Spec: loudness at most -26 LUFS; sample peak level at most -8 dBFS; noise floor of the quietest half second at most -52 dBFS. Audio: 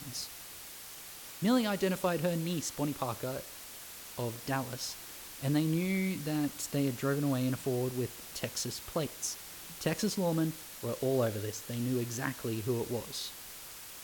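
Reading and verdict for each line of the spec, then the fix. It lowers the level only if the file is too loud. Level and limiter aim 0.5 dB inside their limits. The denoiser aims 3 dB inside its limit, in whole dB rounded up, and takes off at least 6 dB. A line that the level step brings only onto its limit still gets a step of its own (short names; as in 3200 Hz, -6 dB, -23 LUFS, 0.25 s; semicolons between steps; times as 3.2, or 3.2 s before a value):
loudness -34.5 LUFS: OK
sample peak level -17.0 dBFS: OK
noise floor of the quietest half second -47 dBFS: fail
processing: denoiser 8 dB, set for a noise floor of -47 dBFS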